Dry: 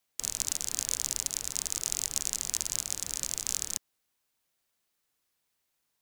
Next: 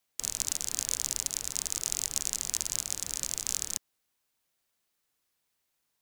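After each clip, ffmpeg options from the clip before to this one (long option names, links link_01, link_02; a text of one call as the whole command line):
ffmpeg -i in.wav -af anull out.wav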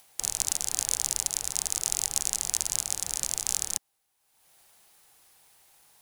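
ffmpeg -i in.wav -af "equalizer=frequency=250:width_type=o:width=0.33:gain=-8,equalizer=frequency=800:width_type=o:width=0.33:gain=9,equalizer=frequency=10000:width_type=o:width=0.33:gain=6,acompressor=mode=upward:threshold=-47dB:ratio=2.5,volume=2dB" out.wav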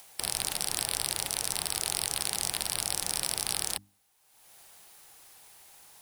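ffmpeg -i in.wav -filter_complex "[0:a]acrossover=split=410|1300|6300[link_01][link_02][link_03][link_04];[link_04]alimiter=limit=-15dB:level=0:latency=1:release=15[link_05];[link_01][link_02][link_03][link_05]amix=inputs=4:normalize=0,bandreject=frequency=50:width_type=h:width=6,bandreject=frequency=100:width_type=h:width=6,bandreject=frequency=150:width_type=h:width=6,bandreject=frequency=200:width_type=h:width=6,bandreject=frequency=250:width_type=h:width=6,bandreject=frequency=300:width_type=h:width=6,afftfilt=real='re*lt(hypot(re,im),0.0316)':imag='im*lt(hypot(re,im),0.0316)':win_size=1024:overlap=0.75,volume=5.5dB" out.wav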